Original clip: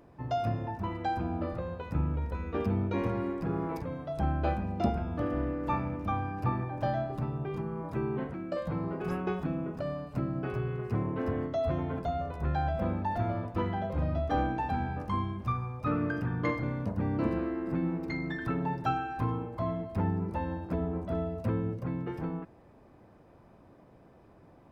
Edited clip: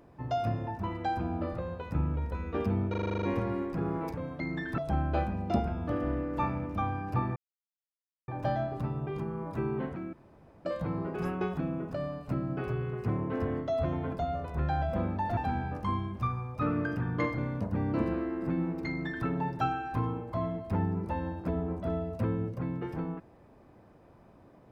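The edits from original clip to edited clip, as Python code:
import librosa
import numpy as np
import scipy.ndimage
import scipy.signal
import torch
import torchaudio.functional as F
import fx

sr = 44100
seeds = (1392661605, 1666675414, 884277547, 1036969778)

y = fx.edit(x, sr, fx.stutter(start_s=2.9, slice_s=0.04, count=9),
    fx.insert_silence(at_s=6.66, length_s=0.92),
    fx.insert_room_tone(at_s=8.51, length_s=0.52),
    fx.cut(start_s=13.23, length_s=1.39),
    fx.duplicate(start_s=18.13, length_s=0.38, to_s=4.08), tone=tone)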